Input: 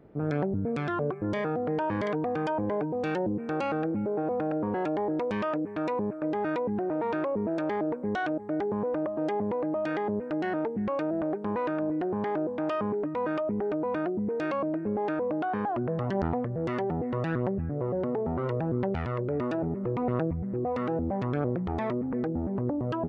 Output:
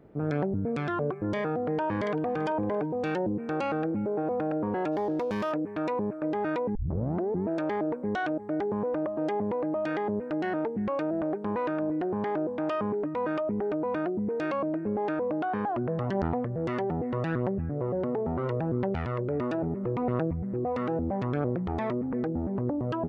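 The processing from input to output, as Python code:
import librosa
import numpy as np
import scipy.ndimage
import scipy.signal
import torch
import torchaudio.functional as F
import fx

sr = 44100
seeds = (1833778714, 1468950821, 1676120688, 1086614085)

y = fx.echo_throw(x, sr, start_s=1.63, length_s=0.78, ms=390, feedback_pct=15, wet_db=-16.0)
y = fx.median_filter(y, sr, points=15, at=(4.91, 5.51), fade=0.02)
y = fx.edit(y, sr, fx.tape_start(start_s=6.75, length_s=0.72), tone=tone)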